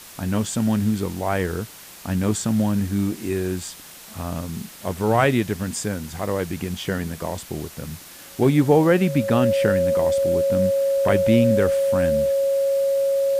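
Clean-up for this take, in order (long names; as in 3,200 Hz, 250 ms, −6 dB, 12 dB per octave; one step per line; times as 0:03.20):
notch filter 550 Hz, Q 30
noise reduction from a noise print 24 dB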